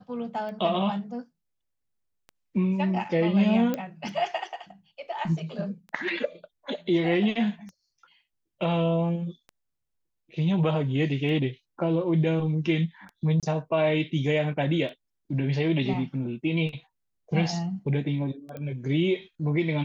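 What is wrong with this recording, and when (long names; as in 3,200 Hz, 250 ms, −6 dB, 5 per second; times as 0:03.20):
scratch tick 33 1/3 rpm −29 dBFS
0:03.74: click −15 dBFS
0:13.40–0:13.43: drop-out 27 ms
0:18.57: click −25 dBFS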